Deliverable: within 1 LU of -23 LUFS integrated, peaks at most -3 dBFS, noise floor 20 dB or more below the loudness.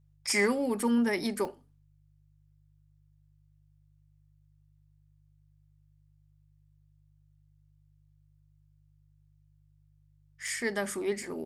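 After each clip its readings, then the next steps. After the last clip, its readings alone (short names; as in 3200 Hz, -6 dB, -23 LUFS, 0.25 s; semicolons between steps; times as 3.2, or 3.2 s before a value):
dropouts 5; longest dropout 1.9 ms; hum 50 Hz; harmonics up to 150 Hz; hum level -62 dBFS; loudness -30.0 LUFS; peak -14.0 dBFS; loudness target -23.0 LUFS
-> interpolate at 0.29/0.8/1.45/10.48/11.23, 1.9 ms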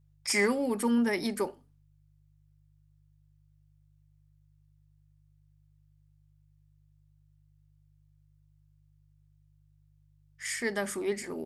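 dropouts 0; hum 50 Hz; harmonics up to 150 Hz; hum level -62 dBFS
-> de-hum 50 Hz, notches 3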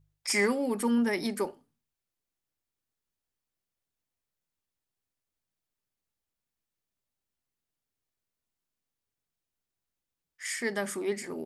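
hum none; loudness -30.0 LUFS; peak -14.0 dBFS; loudness target -23.0 LUFS
-> gain +7 dB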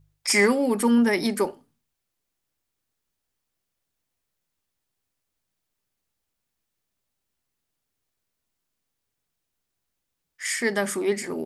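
loudness -23.0 LUFS; peak -7.0 dBFS; noise floor -81 dBFS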